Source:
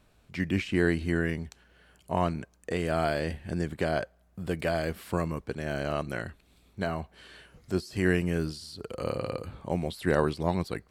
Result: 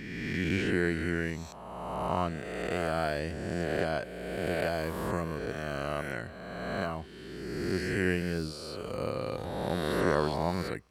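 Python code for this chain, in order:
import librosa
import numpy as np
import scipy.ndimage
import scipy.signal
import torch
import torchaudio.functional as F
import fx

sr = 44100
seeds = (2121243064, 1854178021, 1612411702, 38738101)

y = fx.spec_swells(x, sr, rise_s=1.92)
y = y * librosa.db_to_amplitude(-5.0)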